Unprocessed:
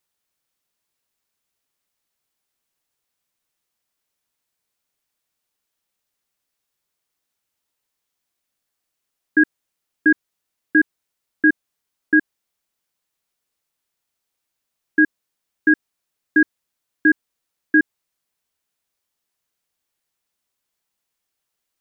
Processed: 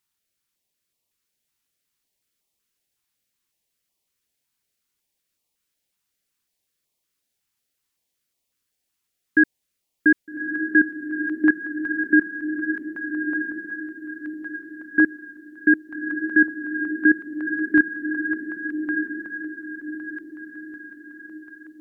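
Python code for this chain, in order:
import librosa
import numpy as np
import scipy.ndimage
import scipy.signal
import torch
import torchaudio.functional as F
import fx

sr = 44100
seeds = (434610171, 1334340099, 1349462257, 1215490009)

y = fx.vibrato(x, sr, rate_hz=9.6, depth_cents=17.0)
y = fx.echo_diffused(y, sr, ms=1232, feedback_pct=44, wet_db=-5.0)
y = fx.filter_held_notch(y, sr, hz=5.4, low_hz=560.0, high_hz=1500.0)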